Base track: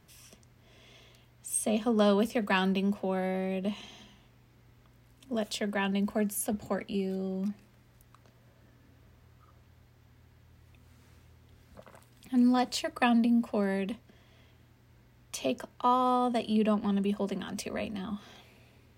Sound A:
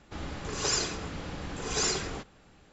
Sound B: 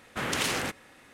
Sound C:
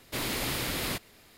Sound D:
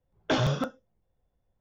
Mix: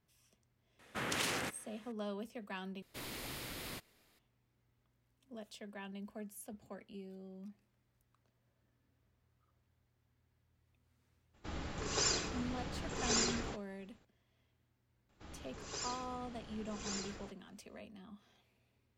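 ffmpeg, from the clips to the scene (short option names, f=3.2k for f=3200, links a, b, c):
-filter_complex "[1:a]asplit=2[a][b];[0:a]volume=-17.5dB[c];[2:a]highpass=62[d];[a]agate=range=-33dB:threshold=-54dB:ratio=3:release=100:detection=peak[e];[c]asplit=2[f][g];[f]atrim=end=2.824[h];[3:a]atrim=end=1.37,asetpts=PTS-STARTPTS,volume=-13.5dB[i];[g]atrim=start=4.186[j];[d]atrim=end=1.13,asetpts=PTS-STARTPTS,volume=-7.5dB,afade=t=in:d=0.004:c=hsin,afade=t=out:st=1.126:d=0.004:c=hsin,adelay=790[k];[e]atrim=end=2.72,asetpts=PTS-STARTPTS,volume=-5dB,afade=t=in:d=0.004:c=hsin,afade=t=out:st=2.716:d=0.004:c=hsin,adelay=11330[l];[b]atrim=end=2.72,asetpts=PTS-STARTPTS,volume=-14.5dB,afade=t=in:d=0.004:c=hsin,afade=t=out:st=2.716:d=0.004:c=hsin,adelay=15090[m];[h][i]acrossfade=d=0.004:c1=hsin:c2=hsin[n];[n][j]acrossfade=d=0.004:c1=hsin:c2=hsin[o];[o][k][l][m]amix=inputs=4:normalize=0"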